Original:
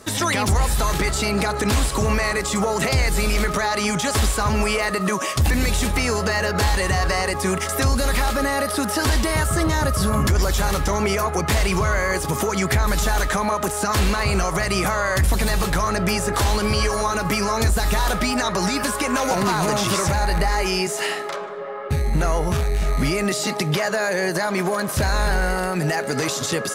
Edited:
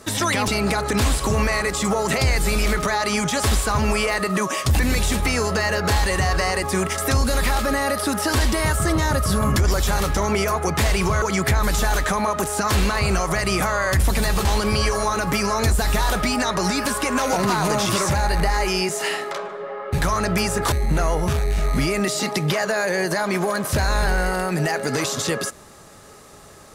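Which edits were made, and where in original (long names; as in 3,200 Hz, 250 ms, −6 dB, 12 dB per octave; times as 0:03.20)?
0:00.48–0:01.19: remove
0:11.93–0:12.46: remove
0:15.69–0:16.43: move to 0:21.96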